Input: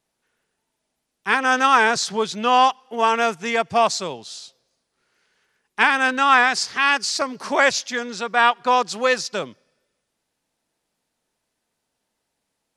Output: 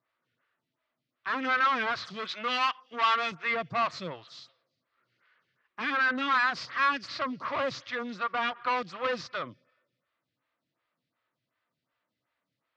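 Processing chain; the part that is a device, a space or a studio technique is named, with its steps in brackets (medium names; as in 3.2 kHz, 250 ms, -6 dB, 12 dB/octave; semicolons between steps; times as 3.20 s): 7.39–8.31 s: dynamic bell 2 kHz, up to -8 dB, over -30 dBFS, Q 0.92; vibe pedal into a guitar amplifier (lamp-driven phase shifter 2.7 Hz; valve stage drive 26 dB, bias 0.35; cabinet simulation 92–4100 Hz, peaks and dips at 120 Hz +9 dB, 210 Hz -5 dB, 420 Hz -10 dB, 810 Hz -9 dB, 1.2 kHz +8 dB, 2 kHz +4 dB); harmonic-percussive split percussive -4 dB; 2.07–3.32 s: tilt EQ +3 dB/octave; trim +2 dB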